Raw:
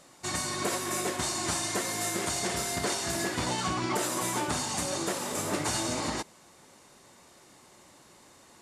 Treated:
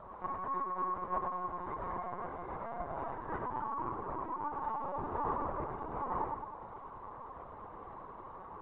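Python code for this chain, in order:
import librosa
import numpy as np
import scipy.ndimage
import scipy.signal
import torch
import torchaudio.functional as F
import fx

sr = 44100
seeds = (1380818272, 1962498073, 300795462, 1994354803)

y = fx.low_shelf(x, sr, hz=120.0, db=-8.0)
y = fx.over_compress(y, sr, threshold_db=-37.0, ratio=-0.5)
y = fx.ladder_lowpass(y, sr, hz=1200.0, resonance_pct=60)
y = fx.dmg_crackle(y, sr, seeds[0], per_s=530.0, level_db=-71.0)
y = fx.echo_feedback(y, sr, ms=106, feedback_pct=50, wet_db=-4.0)
y = fx.lpc_vocoder(y, sr, seeds[1], excitation='pitch_kept', order=16)
y = y * librosa.db_to_amplitude(7.5)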